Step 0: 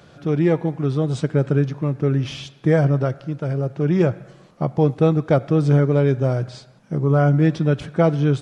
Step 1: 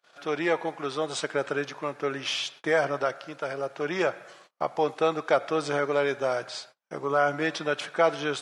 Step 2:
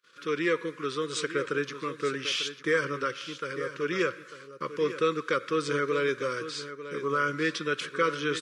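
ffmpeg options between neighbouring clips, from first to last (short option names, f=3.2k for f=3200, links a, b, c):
-filter_complex "[0:a]agate=range=-33dB:threshold=-46dB:ratio=16:detection=peak,highpass=800,asplit=2[a][b];[b]alimiter=limit=-22.5dB:level=0:latency=1:release=30,volume=-2dB[c];[a][c]amix=inputs=2:normalize=0"
-af "asuperstop=centerf=740:order=8:qfactor=1.4,aecho=1:1:897:0.251"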